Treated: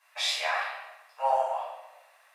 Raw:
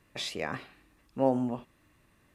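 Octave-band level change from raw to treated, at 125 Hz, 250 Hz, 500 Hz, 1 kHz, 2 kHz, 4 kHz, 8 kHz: under -40 dB, under -40 dB, -0.5 dB, +9.5 dB, +9.0 dB, +8.5 dB, n/a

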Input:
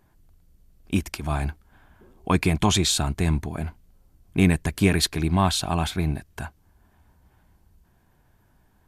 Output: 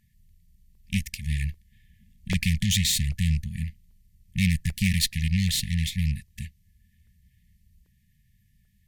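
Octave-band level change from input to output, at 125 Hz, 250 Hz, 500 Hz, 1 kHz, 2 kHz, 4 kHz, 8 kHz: -1.0 dB, -5.0 dB, under -25 dB, under -30 dB, -2.0 dB, -1.0 dB, -1.0 dB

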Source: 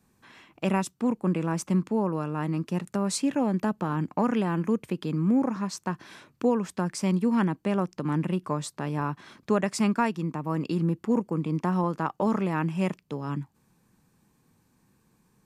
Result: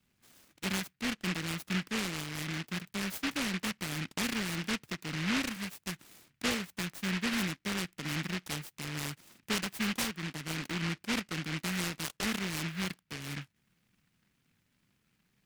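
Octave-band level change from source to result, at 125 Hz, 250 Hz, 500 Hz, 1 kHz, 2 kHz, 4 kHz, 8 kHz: -9.5, -10.5, -14.0, -11.0, +3.5, +7.0, +0.5 dB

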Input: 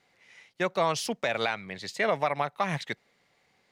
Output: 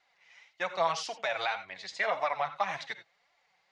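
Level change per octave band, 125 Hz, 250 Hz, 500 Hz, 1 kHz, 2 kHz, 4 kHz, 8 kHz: -16.0, -16.5, -5.0, -1.5, -2.0, -3.0, -6.0 dB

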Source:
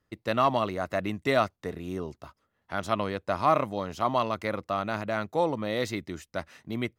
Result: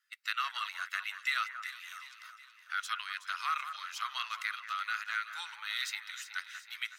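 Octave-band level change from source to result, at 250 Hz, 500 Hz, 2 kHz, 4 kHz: under -40 dB, under -40 dB, +1.0 dB, +1.5 dB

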